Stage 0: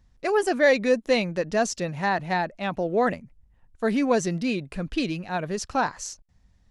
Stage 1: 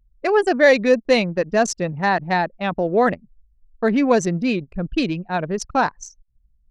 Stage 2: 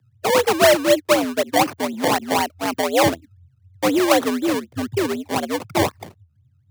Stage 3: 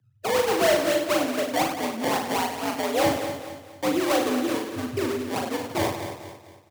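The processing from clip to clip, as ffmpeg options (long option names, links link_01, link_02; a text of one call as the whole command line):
ffmpeg -i in.wav -af "anlmdn=25.1,volume=5.5dB" out.wav
ffmpeg -i in.wav -filter_complex "[0:a]acrossover=split=1900[link_01][link_02];[link_02]alimiter=limit=-21.5dB:level=0:latency=1:release=120[link_03];[link_01][link_03]amix=inputs=2:normalize=0,acrusher=samples=24:mix=1:aa=0.000001:lfo=1:lforange=24:lforate=4,afreqshift=80" out.wav
ffmpeg -i in.wav -filter_complex "[0:a]asplit=2[link_01][link_02];[link_02]aecho=0:1:230|460|690|920:0.251|0.098|0.0382|0.0149[link_03];[link_01][link_03]amix=inputs=2:normalize=0,asoftclip=type=tanh:threshold=-8.5dB,asplit=2[link_04][link_05];[link_05]aecho=0:1:40|96|174.4|284.2|437.8:0.631|0.398|0.251|0.158|0.1[link_06];[link_04][link_06]amix=inputs=2:normalize=0,volume=-6.5dB" out.wav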